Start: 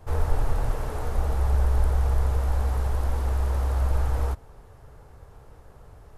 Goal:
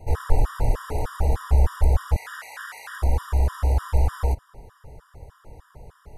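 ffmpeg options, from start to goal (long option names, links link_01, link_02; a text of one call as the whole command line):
ffmpeg -i in.wav -filter_complex "[0:a]asettb=1/sr,asplit=3[link_01][link_02][link_03];[link_01]atrim=end=2.164[link_04];[link_02]atrim=start=2.16:end=2.99,asetpts=PTS-STARTPTS,afade=type=in:duration=0.004:curve=qsin,afade=type=out:start_time=0.826:duration=0.004:curve=qsin,highpass=frequency=1700:width_type=q:width=2.8[link_05];[link_03]atrim=start=2.986[link_06];[link_04][link_05]acrossfade=duration=0.004:curve1=hsin:curve2=qsin[link_07];[link_07][link_06]acrossfade=duration=0.004:curve1=qsin:curve2=hsin,afftfilt=real='re*gt(sin(2*PI*3.3*pts/sr)*(1-2*mod(floor(b*sr/1024/960),2)),0)':imag='im*gt(sin(2*PI*3.3*pts/sr)*(1-2*mod(floor(b*sr/1024/960),2)),0)':win_size=1024:overlap=0.75,volume=5.5dB" out.wav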